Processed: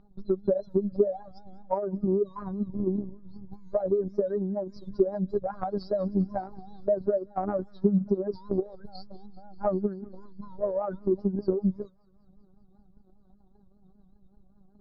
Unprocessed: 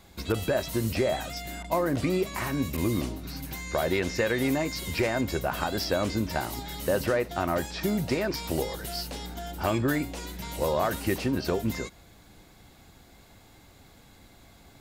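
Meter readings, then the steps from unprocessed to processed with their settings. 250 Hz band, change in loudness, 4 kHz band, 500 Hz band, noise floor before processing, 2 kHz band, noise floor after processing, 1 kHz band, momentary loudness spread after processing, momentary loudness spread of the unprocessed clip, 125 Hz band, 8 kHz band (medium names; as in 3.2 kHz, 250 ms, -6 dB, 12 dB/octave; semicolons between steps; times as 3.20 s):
0.0 dB, -0.5 dB, under -20 dB, +1.5 dB, -55 dBFS, under -20 dB, -60 dBFS, -4.5 dB, 16 LU, 9 LU, -3.5 dB, under -40 dB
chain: spectral contrast enhancement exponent 2.3; elliptic band-stop 1.4–4.1 kHz, stop band 40 dB; de-hum 101 Hz, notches 3; dynamic bell 220 Hz, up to +3 dB, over -35 dBFS, Q 0.91; robot voice 196 Hz; vibrato 5.1 Hz 97 cents; transient shaper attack +7 dB, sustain -6 dB; distance through air 300 m; feedback echo behind a high-pass 195 ms, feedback 75%, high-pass 1.6 kHz, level -21 dB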